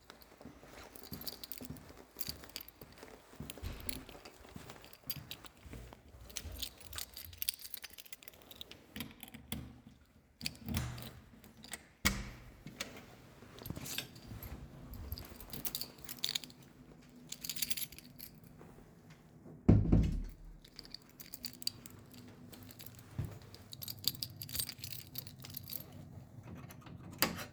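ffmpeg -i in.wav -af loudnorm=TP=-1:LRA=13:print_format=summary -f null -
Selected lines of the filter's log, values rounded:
Input Integrated:    -40.9 LUFS
Input True Peak:      -9.7 dBTP
Input LRA:             9.9 LU
Input Threshold:     -52.2 LUFS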